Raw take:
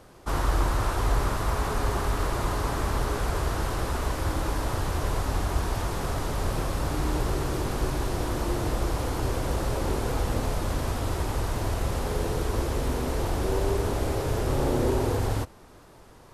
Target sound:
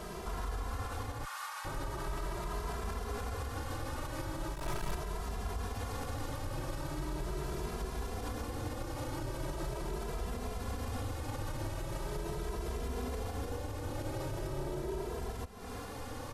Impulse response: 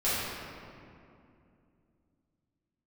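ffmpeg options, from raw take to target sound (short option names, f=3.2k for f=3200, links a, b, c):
-filter_complex "[0:a]asettb=1/sr,asplit=3[a][b][c];[a]atrim=end=4.544[d];[b]atrim=start=4.54:end=4.95,asetpts=PTS-STARTPTS,afade=t=in:d=0.004:c=qsin,afade=t=out:st=0.406:d=0.004:c=qsin,aeval=exprs='(tanh(50.1*val(0)+0.75)-tanh(0.75))/50.1':c=same[e];[c]atrim=start=4.946[f];[d][e]acrossfade=d=0.004:c1=hsin:c2=qsin[g];[g][f]acrossfade=d=0.004:c1=qsin:c2=hsin,acompressor=threshold=-40dB:ratio=8,asettb=1/sr,asplit=3[h][i][j];[h]atrim=end=1.244[k];[i]atrim=start=1.24:end=1.65,asetpts=PTS-STARTPTS,afade=t=in:d=0.004:c=qsin,afade=t=out:st=0.406:d=0.004:c=qsin,highpass=f=970:w=0.5412,highpass=f=970:w=1.3066[l];[j]atrim=start=1.646[m];[k][l]acrossfade=d=0.004:c1=hsin:c2=qsin[n];[n][m]acrossfade=d=0.004:c1=qsin:c2=hsin,alimiter=level_in=14.5dB:limit=-24dB:level=0:latency=1:release=64,volume=-14.5dB,asplit=2[o][p];[p]adelay=2.6,afreqshift=0.4[q];[o][q]amix=inputs=2:normalize=1,volume=12dB"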